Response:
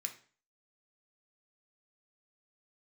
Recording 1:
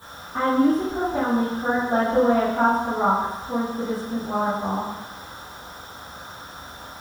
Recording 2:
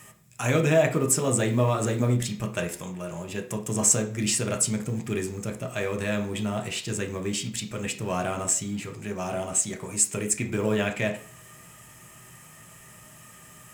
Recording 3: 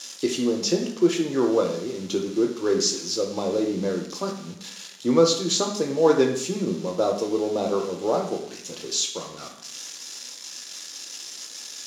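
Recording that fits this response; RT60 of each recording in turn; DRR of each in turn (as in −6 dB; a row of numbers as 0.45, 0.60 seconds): 2; 1.1, 0.40, 0.65 seconds; −14.0, 3.5, 1.0 decibels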